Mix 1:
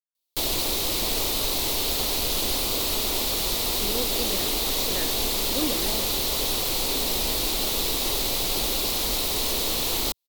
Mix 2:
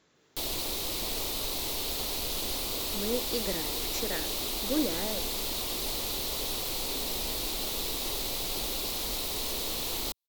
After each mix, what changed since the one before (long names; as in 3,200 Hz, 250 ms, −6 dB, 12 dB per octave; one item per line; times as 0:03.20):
speech: entry −0.85 s
background −7.5 dB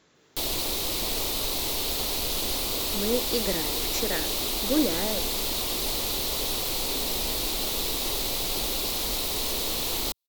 speech +5.0 dB
background +4.5 dB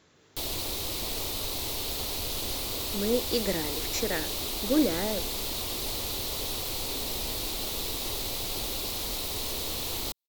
background −4.5 dB
master: add parametric band 88 Hz +9.5 dB 0.64 octaves